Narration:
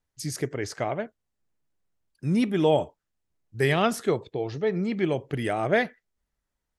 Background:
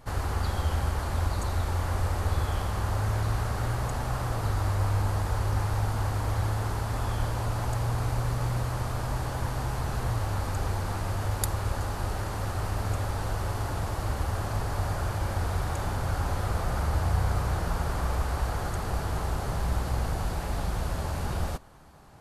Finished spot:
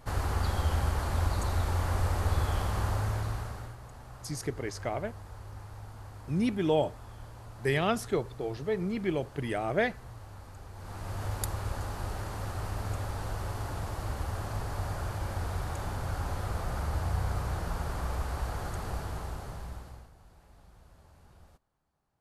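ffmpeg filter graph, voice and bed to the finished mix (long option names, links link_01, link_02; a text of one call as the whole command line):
ffmpeg -i stem1.wav -i stem2.wav -filter_complex "[0:a]adelay=4050,volume=-5dB[link_01];[1:a]volume=11.5dB,afade=type=out:start_time=2.82:duration=0.94:silence=0.149624,afade=type=in:start_time=10.73:duration=0.52:silence=0.237137,afade=type=out:start_time=18.87:duration=1.23:silence=0.0794328[link_02];[link_01][link_02]amix=inputs=2:normalize=0" out.wav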